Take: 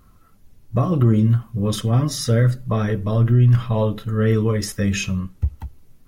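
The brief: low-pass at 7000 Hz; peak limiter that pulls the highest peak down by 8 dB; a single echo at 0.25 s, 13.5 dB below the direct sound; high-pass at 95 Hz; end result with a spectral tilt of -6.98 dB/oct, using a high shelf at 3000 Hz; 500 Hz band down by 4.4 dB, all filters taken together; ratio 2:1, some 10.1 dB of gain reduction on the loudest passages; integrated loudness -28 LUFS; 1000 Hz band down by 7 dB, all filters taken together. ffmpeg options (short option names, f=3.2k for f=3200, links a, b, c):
-af "highpass=95,lowpass=7k,equalizer=f=500:t=o:g=-3.5,equalizer=f=1k:t=o:g=-7,highshelf=f=3k:g=-7,acompressor=threshold=-32dB:ratio=2,alimiter=level_in=1.5dB:limit=-24dB:level=0:latency=1,volume=-1.5dB,aecho=1:1:250:0.211,volume=6dB"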